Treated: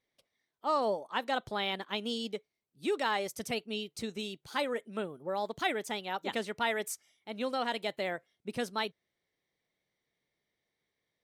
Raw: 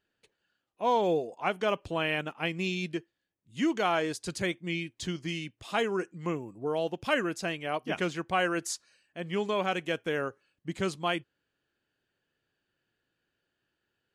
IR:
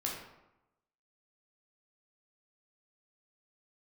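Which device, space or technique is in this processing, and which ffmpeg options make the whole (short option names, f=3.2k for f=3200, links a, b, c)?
nightcore: -af "asetrate=55566,aresample=44100,volume=-3.5dB"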